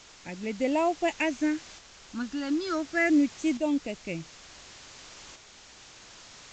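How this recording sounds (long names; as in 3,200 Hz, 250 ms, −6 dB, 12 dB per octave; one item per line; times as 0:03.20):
phaser sweep stages 6, 0.33 Hz, lowest notch 600–1,500 Hz
a quantiser's noise floor 8 bits, dither triangular
tremolo saw up 0.56 Hz, depth 45%
A-law companding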